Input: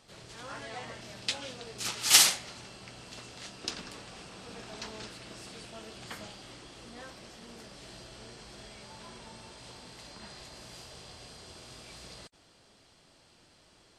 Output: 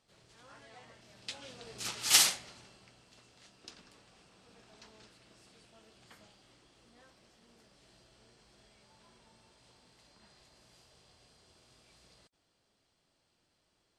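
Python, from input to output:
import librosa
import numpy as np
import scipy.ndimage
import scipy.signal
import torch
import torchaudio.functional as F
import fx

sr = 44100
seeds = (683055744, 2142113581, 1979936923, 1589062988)

y = fx.gain(x, sr, db=fx.line((1.06, -13.5), (1.73, -4.0), (2.25, -4.0), (3.05, -15.0)))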